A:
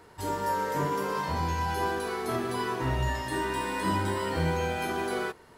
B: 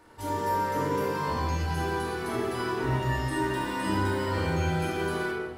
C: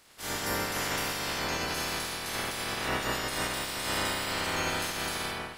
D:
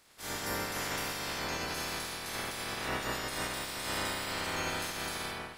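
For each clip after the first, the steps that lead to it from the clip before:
shoebox room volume 1300 m³, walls mixed, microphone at 2.5 m; gain -4.5 dB
spectral limiter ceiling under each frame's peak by 29 dB; gain -3.5 dB
notch 2900 Hz, Q 28; gain -4 dB

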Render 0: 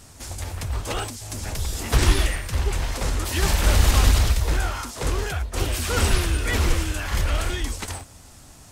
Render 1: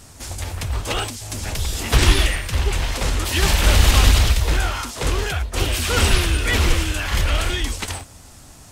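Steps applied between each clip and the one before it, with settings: dynamic EQ 3000 Hz, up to +5 dB, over -44 dBFS, Q 1.2; gain +3 dB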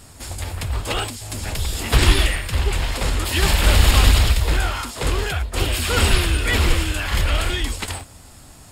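notch 6000 Hz, Q 6.1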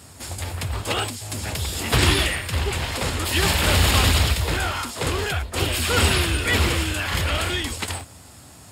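HPF 70 Hz 24 dB/oct

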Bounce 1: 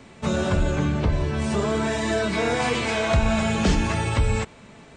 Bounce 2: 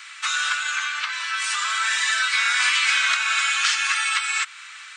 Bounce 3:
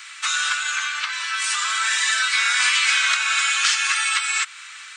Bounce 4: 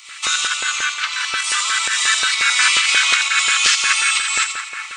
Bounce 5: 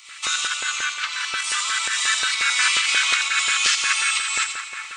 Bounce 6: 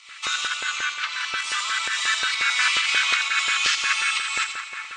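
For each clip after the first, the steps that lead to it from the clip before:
elliptic high-pass 1300 Hz, stop band 70 dB; in parallel at +2.5 dB: compressor, threshold -39 dBFS, peak gain reduction 12.5 dB; on the sum: gain +7 dB
high shelf 5300 Hz +6 dB
pump 128 bpm, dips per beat 1, -8 dB, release 0.177 s; split-band echo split 2200 Hz, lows 0.427 s, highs 84 ms, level -7 dB; LFO notch square 5.6 Hz 470–1600 Hz; gain +4.5 dB
multi-head echo 0.117 s, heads first and third, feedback 41%, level -20 dB; gain -4.5 dB
air absorption 80 m

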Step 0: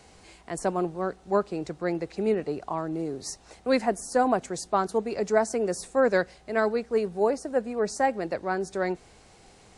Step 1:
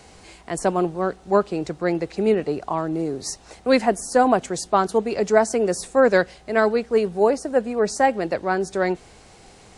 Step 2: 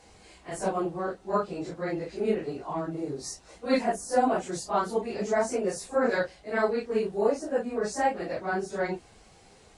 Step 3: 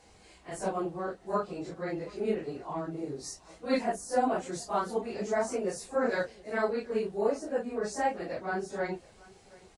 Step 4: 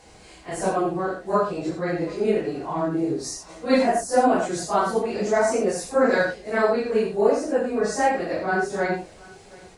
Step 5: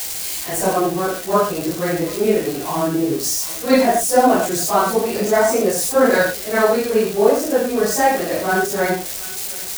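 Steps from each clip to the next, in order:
dynamic EQ 3100 Hz, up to +5 dB, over -54 dBFS, Q 3.7; gain +6 dB
phase scrambler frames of 0.1 s; gain -7.5 dB
echo 0.727 s -23 dB; gain -3.5 dB
non-linear reverb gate 0.1 s rising, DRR 4 dB; gain +8 dB
switching spikes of -22 dBFS; gain +5 dB

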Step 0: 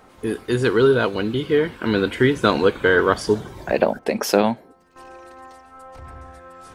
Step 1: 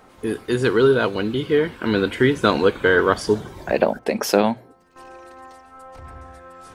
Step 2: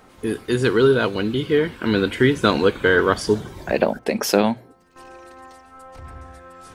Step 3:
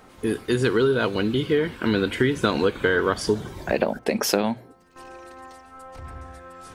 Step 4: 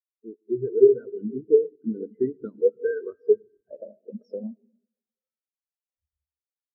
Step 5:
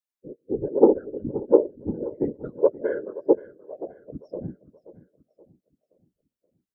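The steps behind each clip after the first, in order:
notches 60/120 Hz
bell 770 Hz -3.5 dB 2.2 oct; gain +2 dB
compressor 4:1, threshold -17 dBFS, peak gain reduction 6.5 dB
digital reverb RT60 3.7 s, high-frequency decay 0.55×, pre-delay 25 ms, DRR 5 dB; spectral expander 4:1
self-modulated delay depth 0.15 ms; whisperiser; feedback echo 0.526 s, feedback 45%, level -17.5 dB

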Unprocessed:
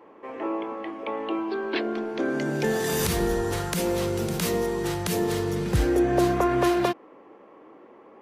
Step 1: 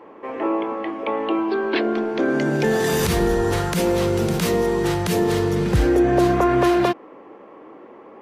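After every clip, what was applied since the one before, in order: high shelf 5600 Hz -6.5 dB; in parallel at +2 dB: limiter -19 dBFS, peak gain reduction 8 dB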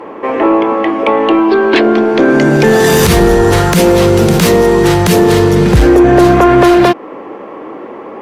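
in parallel at -2 dB: compressor, threshold -26 dBFS, peak gain reduction 12 dB; on the sum: sine folder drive 4 dB, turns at -4.5 dBFS; gain +3 dB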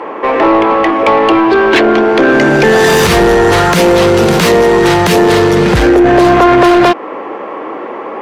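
overdrive pedal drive 14 dB, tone 3500 Hz, clips at -1 dBFS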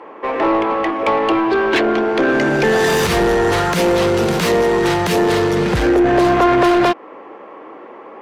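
upward expander 1.5:1, over -21 dBFS; gain -6 dB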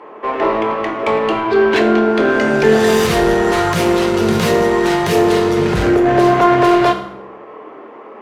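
reverb RT60 0.85 s, pre-delay 4 ms, DRR 2 dB; gain -1.5 dB

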